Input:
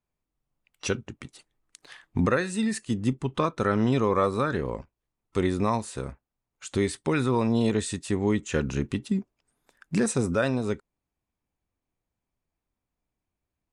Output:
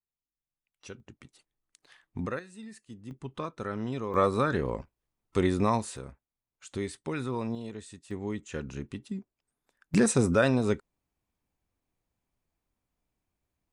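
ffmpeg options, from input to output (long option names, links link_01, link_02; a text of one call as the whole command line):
ffmpeg -i in.wav -af "asetnsamples=nb_out_samples=441:pad=0,asendcmd='1 volume volume -10.5dB;2.39 volume volume -18.5dB;3.11 volume volume -10.5dB;4.14 volume volume -0.5dB;5.97 volume volume -8.5dB;7.55 volume volume -16dB;8.11 volume volume -10dB;9.94 volume volume 1.5dB',volume=-17dB" out.wav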